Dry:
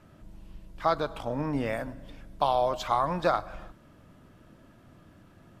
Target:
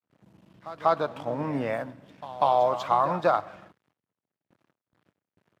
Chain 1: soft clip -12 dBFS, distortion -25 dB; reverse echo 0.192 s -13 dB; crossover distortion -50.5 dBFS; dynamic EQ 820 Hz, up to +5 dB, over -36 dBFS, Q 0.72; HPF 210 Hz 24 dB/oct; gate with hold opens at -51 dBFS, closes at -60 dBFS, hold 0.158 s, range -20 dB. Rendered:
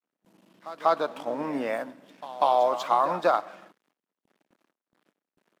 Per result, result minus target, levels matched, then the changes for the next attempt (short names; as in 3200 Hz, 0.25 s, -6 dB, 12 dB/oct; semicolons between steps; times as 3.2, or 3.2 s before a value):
125 Hz band -11.0 dB; 8000 Hz band +4.5 dB
change: HPF 100 Hz 24 dB/oct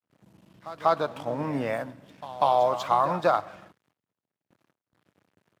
8000 Hz band +4.5 dB
add after HPF: high shelf 5300 Hz -7.5 dB